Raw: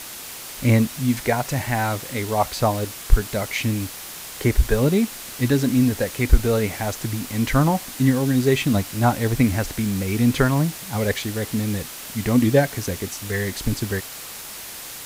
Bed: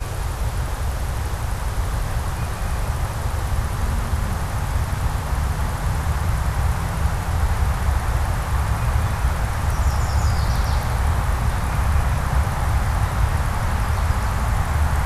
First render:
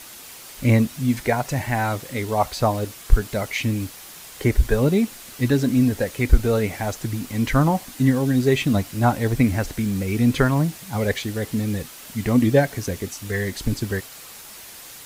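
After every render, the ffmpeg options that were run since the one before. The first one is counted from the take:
-af "afftdn=nr=6:nf=-36"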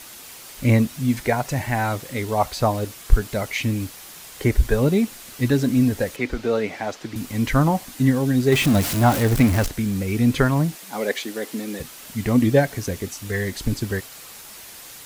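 -filter_complex "[0:a]asettb=1/sr,asplit=3[a][b][c];[a]atrim=end=6.164[d];[b]atrim=start=6.16:end=7.16,asetpts=PTS-STARTPTS,afade=t=in:d=0.004:c=qsin,afade=t=out:st=0.996:d=0.004:c=qsin,acrossover=split=190 5800:gain=0.126 1 0.158[e][f][g];[e][f][g]amix=inputs=3:normalize=0[h];[c]atrim=start=7.156[i];[d][h]acrossfade=d=0.004:c1=hsin:c2=qsin[j];[j][i]acrossfade=d=0.004:c1=qsin:c2=hsin,asettb=1/sr,asplit=3[k][l][m];[k]atrim=end=8.524[n];[l]atrim=start=8.52:end=9.68,asetpts=PTS-STARTPTS,afade=t=in:d=0.004:c=qsin,afade=t=out:st=1.156:d=0.004:c=qsin,aeval=exprs='val(0)+0.5*0.0891*sgn(val(0))':c=same[o];[m]atrim=start=9.676[p];[n][o]acrossfade=d=0.004:c1=hsin:c2=qsin[q];[q][p]acrossfade=d=0.004:c1=qsin:c2=hsin,asettb=1/sr,asplit=3[r][s][t];[r]atrim=end=10.754[u];[s]atrim=start=10.75:end=11.8,asetpts=PTS-STARTPTS,afade=t=in:d=0.004:c=qsin,afade=t=out:st=1.046:d=0.004:c=qsin,highpass=f=240:w=0.5412,highpass=f=240:w=1.3066[v];[t]atrim=start=11.796[w];[u][v]acrossfade=d=0.004:c1=hsin:c2=qsin[x];[x][w]acrossfade=d=0.004:c1=qsin:c2=hsin"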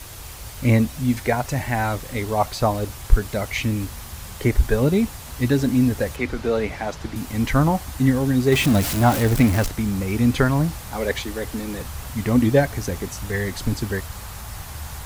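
-filter_complex "[1:a]volume=-15dB[a];[0:a][a]amix=inputs=2:normalize=0"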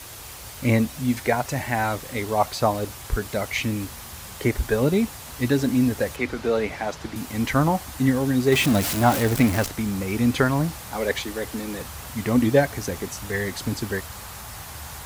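-af "highpass=42,lowshelf=f=130:g=-8.5"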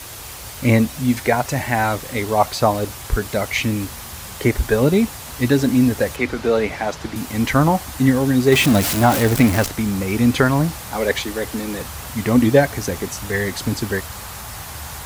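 -af "volume=5dB,alimiter=limit=-2dB:level=0:latency=1"

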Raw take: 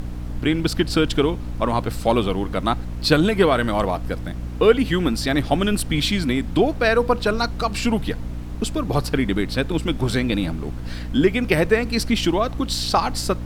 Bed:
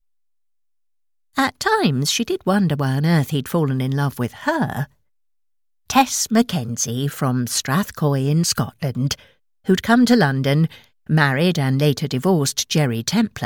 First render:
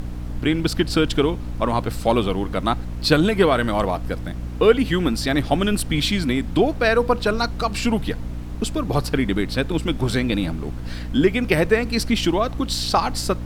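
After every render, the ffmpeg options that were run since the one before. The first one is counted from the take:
-af anull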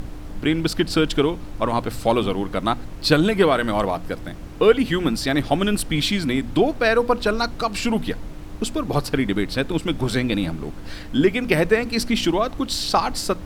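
-af "bandreject=f=60:t=h:w=4,bandreject=f=120:t=h:w=4,bandreject=f=180:t=h:w=4,bandreject=f=240:t=h:w=4"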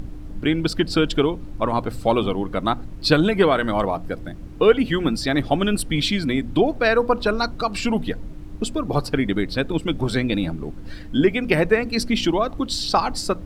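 -af "afftdn=nr=9:nf=-35"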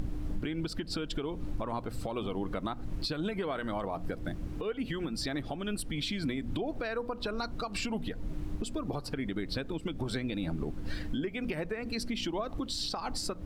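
-af "acompressor=threshold=-23dB:ratio=16,alimiter=level_in=0.5dB:limit=-24dB:level=0:latency=1:release=266,volume=-0.5dB"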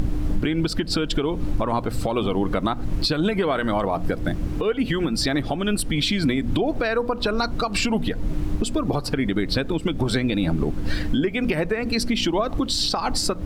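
-af "volume=12dB"

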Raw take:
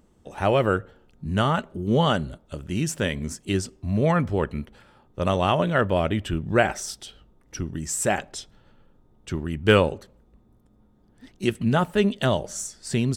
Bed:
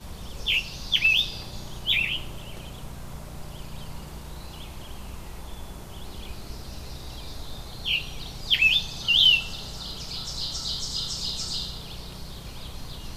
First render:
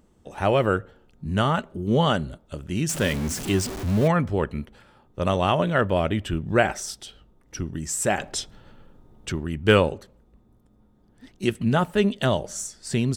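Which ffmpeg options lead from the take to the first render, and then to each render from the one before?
-filter_complex "[0:a]asettb=1/sr,asplit=3[a][b][c];[a]atrim=end=2.894[d];[b]atrim=start=2.89:end=4.08,asetpts=PTS-STARTPTS,afade=t=in:d=0.004:c=qsin,afade=t=out:st=1.186:d=0.004:c=qsin,aeval=exprs='val(0)+0.5*0.0422*sgn(val(0))':c=same[e];[c]atrim=start=4.076[f];[d][e]acrossfade=d=0.004:c1=hsin:c2=qsin[g];[g][f]acrossfade=d=0.004:c1=qsin:c2=hsin,asettb=1/sr,asplit=3[h][i][j];[h]atrim=end=8.204[k];[i]atrim=start=8.2:end=9.32,asetpts=PTS-STARTPTS,afade=t=in:d=0.004:c=qsin,afade=t=out:st=1.116:d=0.004:c=qsin,acontrast=73[l];[j]atrim=start=9.316[m];[k][l]acrossfade=d=0.004:c1=hsin:c2=qsin[n];[n][m]acrossfade=d=0.004:c1=qsin:c2=hsin"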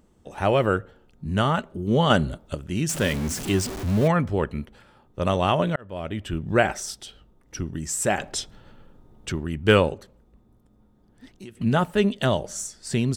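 -filter_complex "[0:a]asettb=1/sr,asplit=3[a][b][c];[a]atrim=end=2.104[d];[b]atrim=start=2.1:end=2.55,asetpts=PTS-STARTPTS,afade=t=in:d=0.004:c=qsin,afade=t=out:st=0.446:d=0.004:c=qsin,acontrast=37[e];[c]atrim=start=2.546[f];[d][e]acrossfade=d=0.004:c1=hsin:c2=qsin[g];[g][f]acrossfade=d=0.004:c1=qsin:c2=hsin,asettb=1/sr,asplit=3[h][i][j];[h]atrim=end=9.944[k];[i]atrim=start=9.94:end=11.57,asetpts=PTS-STARTPTS,afade=t=in:d=0.004:c=qsin,afade=t=out:st=1.626:d=0.004:c=qsin,acompressor=threshold=-38dB:ratio=6:attack=3.2:release=140:knee=1:detection=peak[l];[j]atrim=start=11.566[m];[k][l]acrossfade=d=0.004:c1=hsin:c2=qsin[n];[n][m]acrossfade=d=0.004:c1=qsin:c2=hsin,asplit=2[o][p];[o]atrim=end=5.76,asetpts=PTS-STARTPTS,afade=t=out:st=5.756:d=0.004:c=hsin[q];[p]atrim=start=5.76,asetpts=PTS-STARTPTS,afade=t=in:d=0.72[r];[q][r]concat=n=2:v=0:a=1"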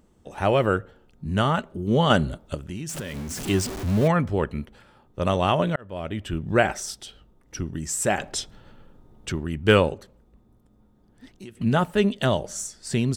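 -filter_complex "[0:a]asettb=1/sr,asplit=3[a][b][c];[a]atrim=end=2.614[d];[b]atrim=start=2.61:end=3.4,asetpts=PTS-STARTPTS,afade=t=in:d=0.004:c=qsin,afade=t=out:st=0.786:d=0.004:c=qsin,acompressor=threshold=-29dB:ratio=8:attack=3.2:release=140:knee=1:detection=peak[e];[c]atrim=start=3.396[f];[d][e]acrossfade=d=0.004:c1=hsin:c2=qsin[g];[g][f]acrossfade=d=0.004:c1=qsin:c2=hsin"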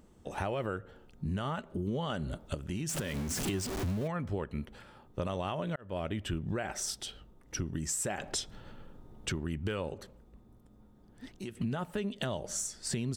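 -af "alimiter=limit=-16.5dB:level=0:latency=1:release=221,acompressor=threshold=-32dB:ratio=4"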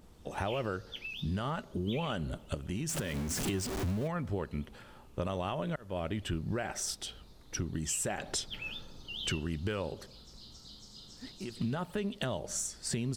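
-filter_complex "[1:a]volume=-22dB[a];[0:a][a]amix=inputs=2:normalize=0"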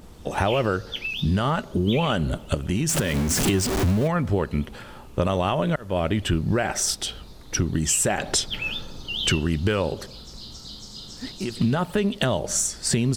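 -af "volume=12dB"

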